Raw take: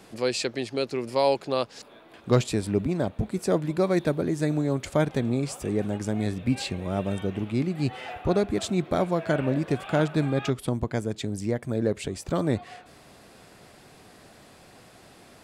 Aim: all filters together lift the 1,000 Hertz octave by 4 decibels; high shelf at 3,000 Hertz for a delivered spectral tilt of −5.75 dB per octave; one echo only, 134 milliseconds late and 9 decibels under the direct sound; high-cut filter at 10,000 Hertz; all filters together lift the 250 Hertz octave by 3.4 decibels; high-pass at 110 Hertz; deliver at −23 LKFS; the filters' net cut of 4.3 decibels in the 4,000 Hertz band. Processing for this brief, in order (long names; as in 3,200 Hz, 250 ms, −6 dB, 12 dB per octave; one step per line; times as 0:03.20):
high-pass filter 110 Hz
low-pass filter 10,000 Hz
parametric band 250 Hz +4.5 dB
parametric band 1,000 Hz +5 dB
high-shelf EQ 3,000 Hz +4 dB
parametric band 4,000 Hz −8.5 dB
single-tap delay 134 ms −9 dB
level +1.5 dB